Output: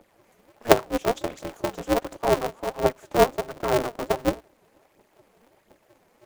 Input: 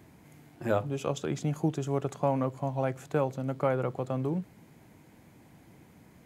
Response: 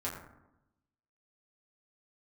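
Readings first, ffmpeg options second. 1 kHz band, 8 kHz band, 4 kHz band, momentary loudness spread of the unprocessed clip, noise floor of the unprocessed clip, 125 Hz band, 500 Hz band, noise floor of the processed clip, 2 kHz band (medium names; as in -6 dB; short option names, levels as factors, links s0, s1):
+8.5 dB, +10.5 dB, +13.5 dB, 4 LU, -57 dBFS, -4.5 dB, +7.5 dB, -64 dBFS, +10.5 dB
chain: -filter_complex "[0:a]aphaser=in_gain=1:out_gain=1:delay=3.7:decay=0.78:speed=1.4:type=triangular,asplit=2[s0][s1];[s1]acrusher=bits=4:mix=0:aa=0.5,volume=0.316[s2];[s0][s2]amix=inputs=2:normalize=0,highpass=f=470:t=q:w=4.9,aeval=exprs='val(0)*sgn(sin(2*PI*120*n/s))':c=same,volume=0.398"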